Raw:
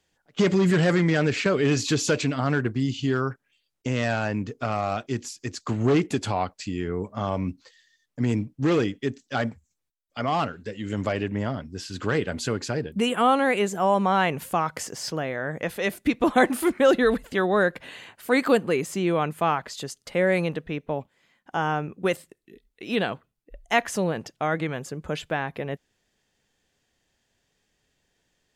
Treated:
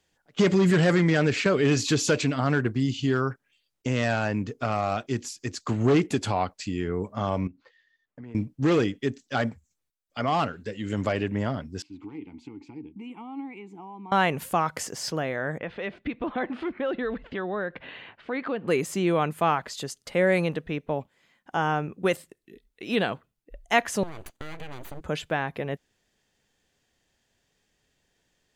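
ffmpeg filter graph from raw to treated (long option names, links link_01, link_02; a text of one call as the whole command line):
ffmpeg -i in.wav -filter_complex "[0:a]asettb=1/sr,asplit=3[link_01][link_02][link_03];[link_01]atrim=end=7.474[link_04];[link_02]atrim=start=7.47:end=8.35,asetpts=PTS-STARTPTS,afade=type=in:duration=0.004:curve=qsin,afade=type=out:start_time=0.876:duration=0.004:curve=qsin,lowshelf=frequency=200:gain=-7.5,acompressor=threshold=-41dB:ratio=4:attack=3.2:release=140:knee=1:detection=peak,lowpass=2000[link_05];[link_03]atrim=start=8.346[link_06];[link_04][link_05]acrossfade=duration=0.004:curve1=hsin:curve2=qsin[link_07];[link_07][link_06]acrossfade=duration=0.004:curve1=qsin:curve2=hsin,asettb=1/sr,asplit=3[link_08][link_09][link_10];[link_08]atrim=end=11.824[link_11];[link_09]atrim=start=11.82:end=14.12,asetpts=PTS-STARTPTS,afade=type=in:duration=0.004:curve=qsin,afade=type=out:start_time=2.296:duration=0.004:curve=qsin,equalizer=frequency=64:width_type=o:width=2.2:gain=14,acompressor=threshold=-23dB:ratio=4:attack=3.2:release=140:knee=1:detection=peak,asplit=3[link_12][link_13][link_14];[link_12]bandpass=frequency=300:width_type=q:width=8,volume=0dB[link_15];[link_13]bandpass=frequency=870:width_type=q:width=8,volume=-6dB[link_16];[link_14]bandpass=frequency=2240:width_type=q:width=8,volume=-9dB[link_17];[link_15][link_16][link_17]amix=inputs=3:normalize=0[link_18];[link_10]atrim=start=14.116[link_19];[link_11][link_18]acrossfade=duration=0.004:curve1=hsin:curve2=qsin[link_20];[link_20][link_19]acrossfade=duration=0.004:curve1=qsin:curve2=hsin,asettb=1/sr,asplit=3[link_21][link_22][link_23];[link_21]atrim=end=15.584[link_24];[link_22]atrim=start=15.58:end=18.68,asetpts=PTS-STARTPTS,afade=type=in:duration=0.004:curve=qsin,afade=type=out:start_time=3.096:duration=0.004:curve=qsin,lowpass=frequency=3400:width=0.5412,lowpass=frequency=3400:width=1.3066,acompressor=threshold=-33dB:ratio=2:attack=3.2:release=140:knee=1:detection=peak[link_25];[link_23]atrim=start=18.676[link_26];[link_24][link_25]acrossfade=duration=0.004:curve1=hsin:curve2=qsin[link_27];[link_27][link_26]acrossfade=duration=0.004:curve1=qsin:curve2=hsin,asettb=1/sr,asplit=3[link_28][link_29][link_30];[link_28]atrim=end=24.034[link_31];[link_29]atrim=start=24.03:end=25.01,asetpts=PTS-STARTPTS,afade=type=in:duration=0.004:curve=qsin,afade=type=out:start_time=0.976:duration=0.004:curve=qsin,aeval=exprs='abs(val(0))':channel_layout=same,acompressor=threshold=-31dB:ratio=16:attack=3.2:release=140:knee=1:detection=peak,asuperstop=centerf=5300:order=4:qfactor=6.7[link_32];[link_30]atrim=start=25.006[link_33];[link_31][link_32]acrossfade=duration=0.004:curve1=hsin:curve2=qsin[link_34];[link_34][link_33]acrossfade=duration=0.004:curve1=qsin:curve2=hsin" out.wav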